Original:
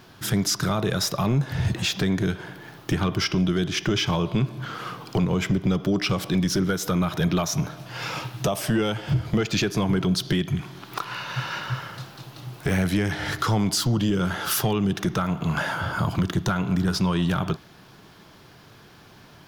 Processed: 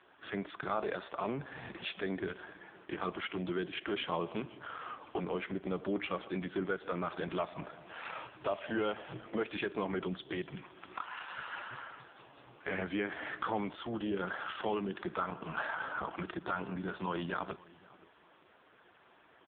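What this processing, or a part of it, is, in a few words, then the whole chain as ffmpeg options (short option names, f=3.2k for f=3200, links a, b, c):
satellite phone: -filter_complex "[0:a]asplit=3[a][b][c];[a]afade=t=out:st=14.46:d=0.02[d];[b]lowpass=f=5.1k:w=0.5412,lowpass=f=5.1k:w=1.3066,afade=t=in:st=14.46:d=0.02,afade=t=out:st=14.97:d=0.02[e];[c]afade=t=in:st=14.97:d=0.02[f];[d][e][f]amix=inputs=3:normalize=0,highpass=360,lowpass=3.1k,aecho=1:1:519:0.075,volume=-5dB" -ar 8000 -c:a libopencore_amrnb -b:a 5150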